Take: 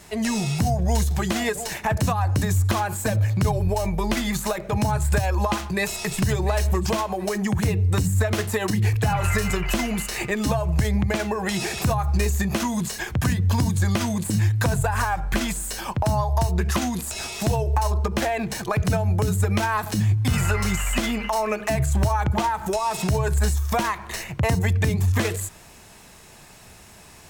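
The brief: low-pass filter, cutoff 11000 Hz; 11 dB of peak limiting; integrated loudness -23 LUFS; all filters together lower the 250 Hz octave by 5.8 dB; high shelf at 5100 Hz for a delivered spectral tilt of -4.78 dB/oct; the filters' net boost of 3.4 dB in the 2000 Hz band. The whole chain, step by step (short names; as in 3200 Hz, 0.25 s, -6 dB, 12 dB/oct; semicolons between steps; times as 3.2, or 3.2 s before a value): LPF 11000 Hz; bell 250 Hz -8.5 dB; bell 2000 Hz +3.5 dB; high shelf 5100 Hz +5.5 dB; gain +4.5 dB; limiter -14.5 dBFS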